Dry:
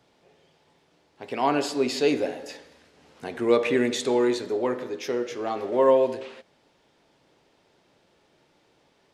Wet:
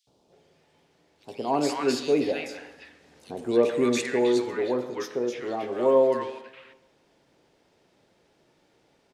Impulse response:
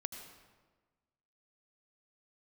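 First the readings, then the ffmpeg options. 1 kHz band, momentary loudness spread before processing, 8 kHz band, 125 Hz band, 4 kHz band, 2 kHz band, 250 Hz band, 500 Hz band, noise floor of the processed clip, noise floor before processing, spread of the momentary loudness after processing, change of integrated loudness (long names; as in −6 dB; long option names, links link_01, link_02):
−2.5 dB, 17 LU, −0.5 dB, 0.0 dB, −2.5 dB, −2.0 dB, 0.0 dB, −0.5 dB, −66 dBFS, −65 dBFS, 15 LU, −1.0 dB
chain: -filter_complex "[0:a]acrossover=split=1100|3300[link_01][link_02][link_03];[link_01]adelay=70[link_04];[link_02]adelay=320[link_05];[link_04][link_05][link_03]amix=inputs=3:normalize=0,asplit=2[link_06][link_07];[1:a]atrim=start_sample=2205[link_08];[link_07][link_08]afir=irnorm=-1:irlink=0,volume=-10.5dB[link_09];[link_06][link_09]amix=inputs=2:normalize=0,volume=-2dB"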